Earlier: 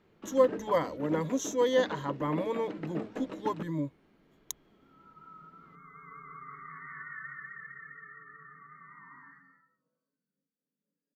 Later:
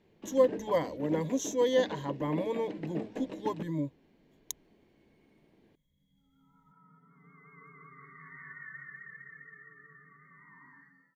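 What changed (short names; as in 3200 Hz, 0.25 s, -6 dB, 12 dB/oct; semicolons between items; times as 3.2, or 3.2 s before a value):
second sound: entry +1.50 s; master: add bell 1300 Hz -13.5 dB 0.41 oct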